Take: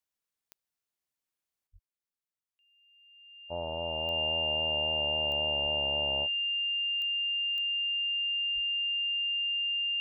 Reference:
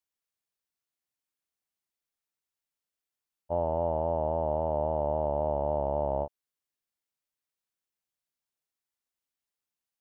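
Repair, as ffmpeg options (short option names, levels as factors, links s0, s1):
-filter_complex "[0:a]adeclick=t=4,bandreject=f=2800:w=30,asplit=3[s0][s1][s2];[s0]afade=t=out:st=1.72:d=0.02[s3];[s1]highpass=f=140:w=0.5412,highpass=f=140:w=1.3066,afade=t=in:st=1.72:d=0.02,afade=t=out:st=1.84:d=0.02[s4];[s2]afade=t=in:st=1.84:d=0.02[s5];[s3][s4][s5]amix=inputs=3:normalize=0,asplit=3[s6][s7][s8];[s6]afade=t=out:st=5.62:d=0.02[s9];[s7]highpass=f=140:w=0.5412,highpass=f=140:w=1.3066,afade=t=in:st=5.62:d=0.02,afade=t=out:st=5.74:d=0.02[s10];[s8]afade=t=in:st=5.74:d=0.02[s11];[s9][s10][s11]amix=inputs=3:normalize=0,asplit=3[s12][s13][s14];[s12]afade=t=out:st=8.54:d=0.02[s15];[s13]highpass=f=140:w=0.5412,highpass=f=140:w=1.3066,afade=t=in:st=8.54:d=0.02,afade=t=out:st=8.66:d=0.02[s16];[s14]afade=t=in:st=8.66:d=0.02[s17];[s15][s16][s17]amix=inputs=3:normalize=0,asetnsamples=n=441:p=0,asendcmd='1.67 volume volume 7.5dB',volume=1"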